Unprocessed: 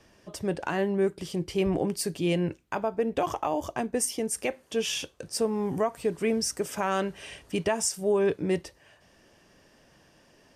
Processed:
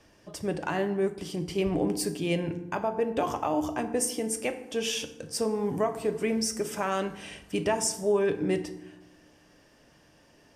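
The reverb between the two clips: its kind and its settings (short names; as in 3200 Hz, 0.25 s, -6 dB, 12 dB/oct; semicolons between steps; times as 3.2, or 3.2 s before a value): FDN reverb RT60 0.93 s, low-frequency decay 1.5×, high-frequency decay 0.6×, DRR 7.5 dB; gain -1 dB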